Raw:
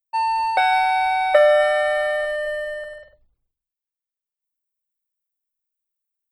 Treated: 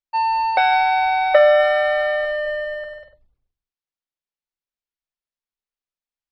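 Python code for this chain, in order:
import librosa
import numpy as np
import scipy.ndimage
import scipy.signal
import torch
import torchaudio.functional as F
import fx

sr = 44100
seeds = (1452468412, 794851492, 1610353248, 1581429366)

y = scipy.signal.sosfilt(scipy.signal.butter(4, 5500.0, 'lowpass', fs=sr, output='sos'), x)
y = F.gain(torch.from_numpy(y), 1.5).numpy()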